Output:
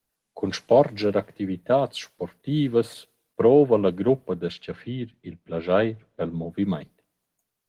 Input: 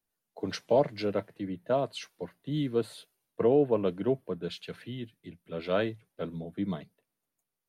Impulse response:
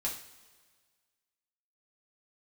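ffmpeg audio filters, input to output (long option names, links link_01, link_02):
-filter_complex "[0:a]asplit=3[link_01][link_02][link_03];[link_01]afade=type=out:start_time=4.51:duration=0.02[link_04];[link_02]aemphasis=mode=reproduction:type=75fm,afade=type=in:start_time=4.51:duration=0.02,afade=type=out:start_time=6.49:duration=0.02[link_05];[link_03]afade=type=in:start_time=6.49:duration=0.02[link_06];[link_04][link_05][link_06]amix=inputs=3:normalize=0,asplit=2[link_07][link_08];[1:a]atrim=start_sample=2205,asetrate=74970,aresample=44100[link_09];[link_08][link_09]afir=irnorm=-1:irlink=0,volume=-21.5dB[link_10];[link_07][link_10]amix=inputs=2:normalize=0,volume=7dB" -ar 48000 -c:a libopus -b:a 16k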